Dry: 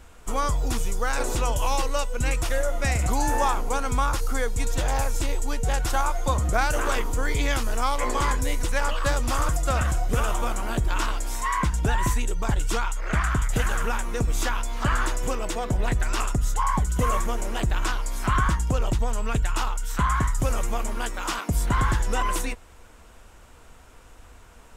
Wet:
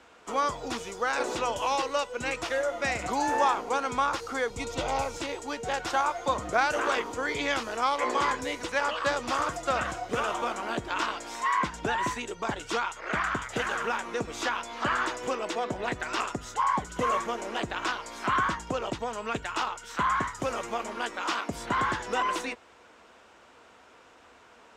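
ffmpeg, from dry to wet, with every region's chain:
-filter_complex "[0:a]asettb=1/sr,asplit=3[a][b][c];[a]atrim=end=4.504[d];[b]atrim=start=4.5:end=5.17,asetpts=PTS-STARTPTS,afade=t=in:d=0.004:c=qsin,afade=t=out:st=0.666:d=0.004:c=qsin,asuperstop=centerf=1700:order=4:qfactor=4.7,lowshelf=f=130:g=10[e];[c]atrim=start=5.166[f];[d][e]acrossfade=d=0.004:c1=hsin:c2=qsin[g];[g][f]acrossfade=d=0.004:c1=qsin:c2=hsin,highpass=89,acrossover=split=240 6100:gain=0.178 1 0.1[h][i][j];[h][i][j]amix=inputs=3:normalize=0"

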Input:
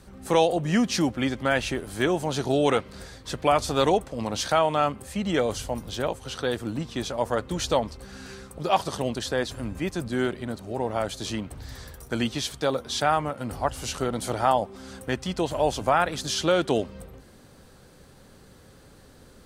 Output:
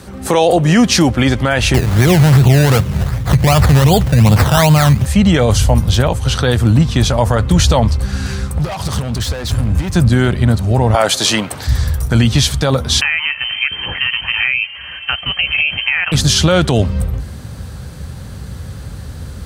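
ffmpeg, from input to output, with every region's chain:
-filter_complex "[0:a]asettb=1/sr,asplit=3[a][b][c];[a]atrim=end=1.744[d];[b]atrim=start=1.74:end=5.06,asetpts=PTS-STARTPTS,afade=t=in:d=0.004:c=qsin,afade=t=out:st=3.316:d=0.004:c=qsin,equalizer=f=140:w=1.5:g=10.5,acrusher=samples=16:mix=1:aa=0.000001:lfo=1:lforange=9.6:lforate=2.6[e];[c]atrim=start=5.056[f];[d][e]acrossfade=d=0.004:c1=hsin:c2=qsin[g];[g][f]acrossfade=d=0.004:c1=qsin:c2=hsin,asettb=1/sr,asplit=3[h][i][j];[h]atrim=end=8.304[k];[i]atrim=start=8.3:end=9.95,asetpts=PTS-STARTPTS,afade=t=in:d=0.004:c=qsin,afade=t=out:st=1.646:d=0.004:c=qsin,acompressor=threshold=-29dB:ratio=10:attack=3.2:release=140:knee=1:detection=peak,asoftclip=type=hard:threshold=-35.5dB[l];[j]atrim=start=9.946[m];[k][l]acrossfade=d=0.004:c1=hsin:c2=qsin[n];[n][m]acrossfade=d=0.004:c1=qsin:c2=hsin,asettb=1/sr,asplit=3[o][p][q];[o]atrim=end=10.944[r];[p]atrim=start=10.94:end=11.67,asetpts=PTS-STARTPTS,afade=t=in:d=0.004:c=qsin,afade=t=out:st=0.726:d=0.004:c=qsin,highpass=420,acontrast=49[s];[q]atrim=start=11.666[t];[r][s]acrossfade=d=0.004:c1=hsin:c2=qsin[u];[u][t]acrossfade=d=0.004:c1=qsin:c2=hsin,asettb=1/sr,asplit=3[v][w][x];[v]atrim=end=13.014[y];[w]atrim=start=13.01:end=16.12,asetpts=PTS-STARTPTS,afade=t=in:d=0.004:c=qsin,afade=t=out:st=3.106:d=0.004:c=qsin,equalizer=f=240:w=1.7:g=-13,acompressor=threshold=-26dB:ratio=12:attack=3.2:release=140:knee=1:detection=peak,lowpass=f=2.7k:t=q:w=0.5098,lowpass=f=2.7k:t=q:w=0.6013,lowpass=f=2.7k:t=q:w=0.9,lowpass=f=2.7k:t=q:w=2.563,afreqshift=-3200[z];[x]atrim=start=16.116[aa];[y][z]acrossfade=d=0.004:c1=hsin:c2=qsin[ab];[ab][aa]acrossfade=d=0.004:c1=qsin:c2=hsin,highpass=f=55:w=0.5412,highpass=f=55:w=1.3066,asubboost=boost=7.5:cutoff=120,alimiter=level_in=17dB:limit=-1dB:release=50:level=0:latency=1,volume=-1dB"

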